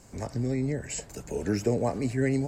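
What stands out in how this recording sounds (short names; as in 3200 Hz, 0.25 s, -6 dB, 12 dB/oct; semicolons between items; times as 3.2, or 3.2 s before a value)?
noise floor -51 dBFS; spectral tilt -6.0 dB/oct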